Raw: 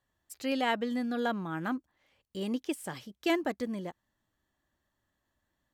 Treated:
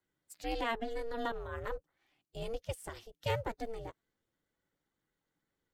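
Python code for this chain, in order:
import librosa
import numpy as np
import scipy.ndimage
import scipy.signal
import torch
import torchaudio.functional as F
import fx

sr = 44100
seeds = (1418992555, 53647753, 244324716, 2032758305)

y = fx.spec_quant(x, sr, step_db=15)
y = y * np.sin(2.0 * np.pi * 230.0 * np.arange(len(y)) / sr)
y = F.gain(torch.from_numpy(y), -2.0).numpy()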